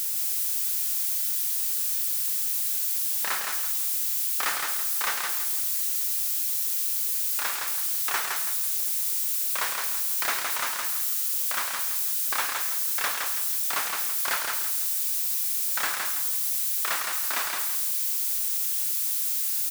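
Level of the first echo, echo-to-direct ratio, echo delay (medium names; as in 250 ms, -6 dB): -4.0 dB, -3.5 dB, 165 ms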